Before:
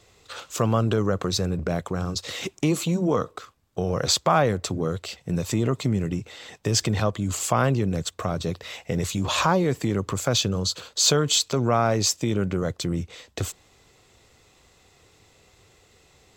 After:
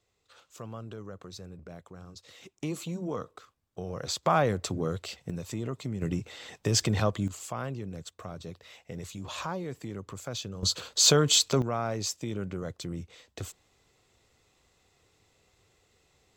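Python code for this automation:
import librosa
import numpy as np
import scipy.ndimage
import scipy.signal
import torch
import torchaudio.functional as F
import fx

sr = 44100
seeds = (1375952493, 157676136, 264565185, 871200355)

y = fx.gain(x, sr, db=fx.steps((0.0, -19.5), (2.61, -11.5), (4.23, -4.5), (5.3, -11.0), (6.02, -3.0), (7.28, -14.0), (10.63, -1.0), (11.62, -10.0)))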